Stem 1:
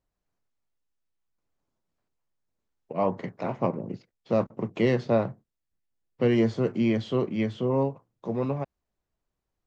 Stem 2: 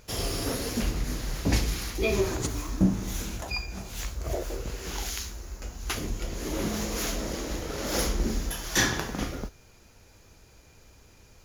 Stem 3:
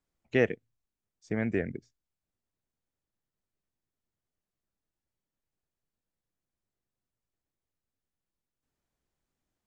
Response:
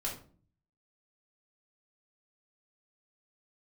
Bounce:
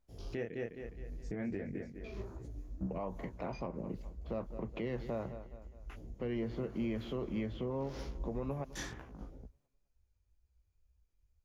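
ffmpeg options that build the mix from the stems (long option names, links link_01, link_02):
-filter_complex "[0:a]lowpass=3700,volume=-5.5dB,asplit=2[link_01][link_02];[link_02]volume=-20.5dB[link_03];[1:a]afwtdn=0.0158,lowshelf=frequency=91:gain=9.5,flanger=delay=15:depth=6.2:speed=2.1,volume=-17dB[link_04];[2:a]tiltshelf=frequency=970:gain=4,flanger=delay=19.5:depth=6.4:speed=1.2,highshelf=frequency=4200:gain=6.5,volume=-2.5dB,asplit=3[link_05][link_06][link_07];[link_06]volume=-12dB[link_08];[link_07]apad=whole_len=504797[link_09];[link_04][link_09]sidechaincompress=threshold=-46dB:ratio=8:attack=8.7:release=390[link_10];[link_01][link_05]amix=inputs=2:normalize=0,acompressor=threshold=-32dB:ratio=2.5,volume=0dB[link_11];[link_03][link_08]amix=inputs=2:normalize=0,aecho=0:1:207|414|621|828|1035|1242:1|0.43|0.185|0.0795|0.0342|0.0147[link_12];[link_10][link_11][link_12]amix=inputs=3:normalize=0,alimiter=level_in=4.5dB:limit=-24dB:level=0:latency=1:release=158,volume=-4.5dB"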